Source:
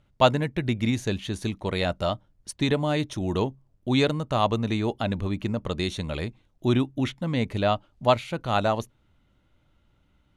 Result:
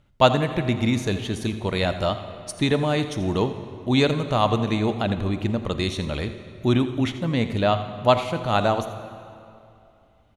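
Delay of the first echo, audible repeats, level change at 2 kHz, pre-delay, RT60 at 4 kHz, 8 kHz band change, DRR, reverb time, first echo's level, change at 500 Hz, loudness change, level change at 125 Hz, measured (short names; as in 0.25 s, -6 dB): 85 ms, 1, +3.0 dB, 32 ms, 1.9 s, +3.0 dB, 9.0 dB, 2.7 s, -14.5 dB, +3.0 dB, +3.0 dB, +3.0 dB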